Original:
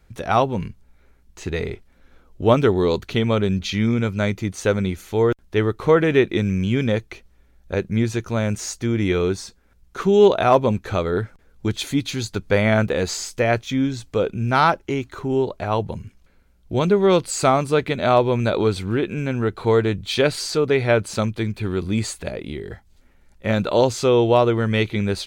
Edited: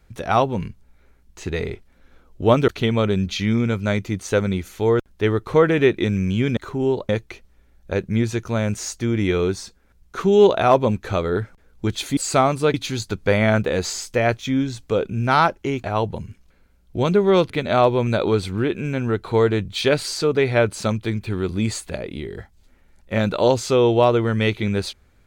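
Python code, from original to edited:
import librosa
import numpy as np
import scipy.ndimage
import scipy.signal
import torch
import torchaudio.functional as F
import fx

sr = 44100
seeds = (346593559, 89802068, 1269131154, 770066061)

y = fx.edit(x, sr, fx.cut(start_s=2.68, length_s=0.33),
    fx.move(start_s=15.07, length_s=0.52, to_s=6.9),
    fx.move(start_s=17.26, length_s=0.57, to_s=11.98), tone=tone)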